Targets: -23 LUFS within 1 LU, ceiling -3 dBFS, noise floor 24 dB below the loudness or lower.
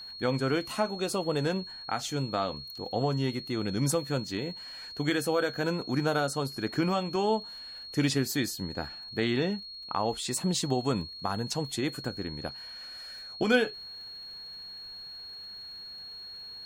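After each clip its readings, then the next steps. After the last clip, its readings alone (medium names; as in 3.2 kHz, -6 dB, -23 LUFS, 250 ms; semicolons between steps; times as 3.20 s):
tick rate 22 per s; steady tone 4.3 kHz; tone level -41 dBFS; loudness -31.5 LUFS; peak level -11.5 dBFS; loudness target -23.0 LUFS
-> de-click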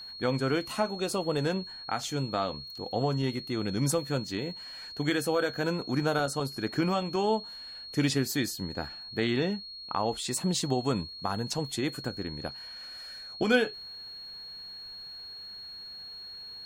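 tick rate 0 per s; steady tone 4.3 kHz; tone level -41 dBFS
-> band-stop 4.3 kHz, Q 30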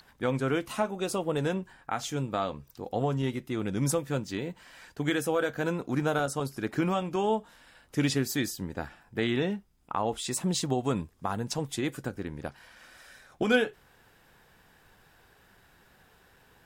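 steady tone not found; loudness -31.0 LUFS; peak level -12.0 dBFS; loudness target -23.0 LUFS
-> trim +8 dB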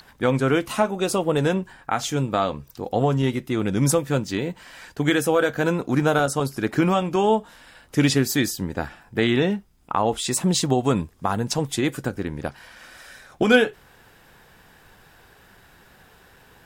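loudness -23.0 LUFS; peak level -4.0 dBFS; noise floor -54 dBFS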